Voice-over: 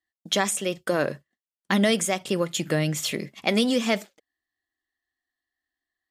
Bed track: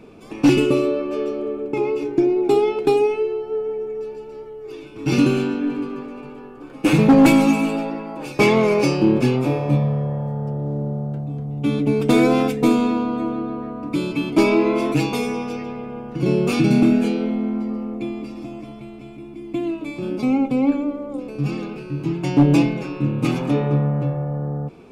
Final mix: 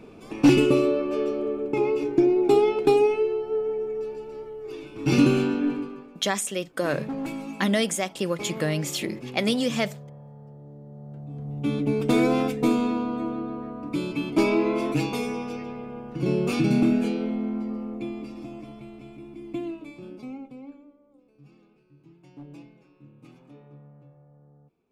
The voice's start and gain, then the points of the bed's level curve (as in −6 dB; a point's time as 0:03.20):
5.90 s, −2.0 dB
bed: 0:05.69 −2 dB
0:06.31 −20 dB
0:10.85 −20 dB
0:11.49 −5.5 dB
0:19.49 −5.5 dB
0:20.98 −30 dB